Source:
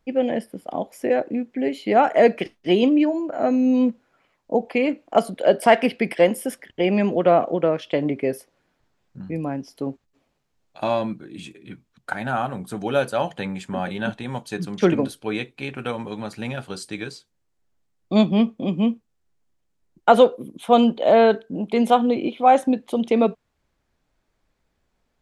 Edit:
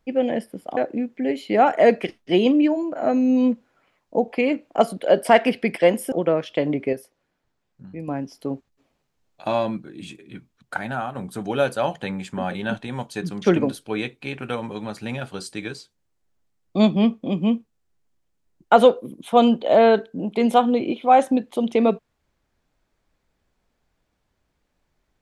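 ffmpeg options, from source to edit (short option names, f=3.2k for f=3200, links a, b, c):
-filter_complex "[0:a]asplit=6[a][b][c][d][e][f];[a]atrim=end=0.772[g];[b]atrim=start=1.138:end=6.492[h];[c]atrim=start=7.478:end=8.292[i];[d]atrim=start=8.288:end=9.442,asetpts=PTS-STARTPTS,volume=-6dB[j];[e]atrim=start=9.438:end=12.51,asetpts=PTS-STARTPTS,afade=t=out:st=2.712:d=0.36:silence=0.421697[k];[f]atrim=start=12.51,asetpts=PTS-STARTPTS,afade=t=in:d=0.004:c=hsin:silence=0.421697[l];[g][h]acrossfade=d=0.004:c1=hsin:c2=hsin[m];[m][i]acrossfade=d=0.004:c1=hsin:c2=hsin[n];[n][j]acrossfade=d=0.004:c1=hsin:c2=hsin[o];[k][l]concat=n=2:v=0:a=1[p];[o][p]acrossfade=d=0.004:c1=hsin:c2=hsin"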